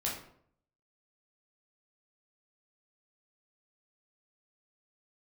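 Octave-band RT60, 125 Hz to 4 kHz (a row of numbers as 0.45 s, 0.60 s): 0.80 s, 0.70 s, 0.65 s, 0.60 s, 0.50 s, 0.40 s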